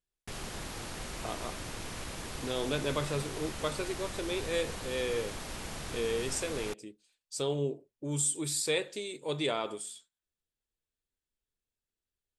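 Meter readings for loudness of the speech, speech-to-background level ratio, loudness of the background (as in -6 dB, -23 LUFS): -34.5 LUFS, 6.0 dB, -40.5 LUFS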